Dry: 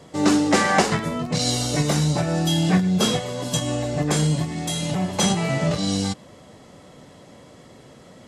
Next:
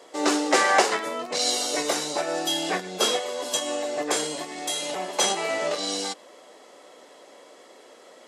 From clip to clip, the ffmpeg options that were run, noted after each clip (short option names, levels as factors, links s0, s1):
-af "highpass=f=360:w=0.5412,highpass=f=360:w=1.3066"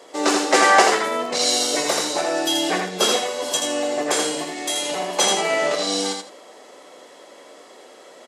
-af "aecho=1:1:82|164|246:0.596|0.125|0.0263,volume=1.5"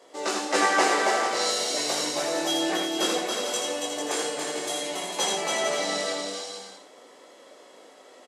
-af "flanger=delay=18:depth=4.9:speed=0.39,aecho=1:1:280|448|548.8|609.3|645.6:0.631|0.398|0.251|0.158|0.1,volume=0.562"